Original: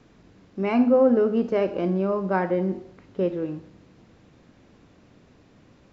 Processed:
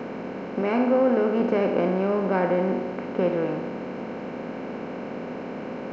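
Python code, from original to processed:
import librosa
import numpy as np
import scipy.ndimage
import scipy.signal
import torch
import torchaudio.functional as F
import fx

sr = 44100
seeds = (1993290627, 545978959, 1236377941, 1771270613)

y = fx.bin_compress(x, sr, power=0.4)
y = fx.low_shelf(y, sr, hz=140.0, db=-9.0, at=(0.61, 1.4))
y = F.gain(torch.from_numpy(y), -4.0).numpy()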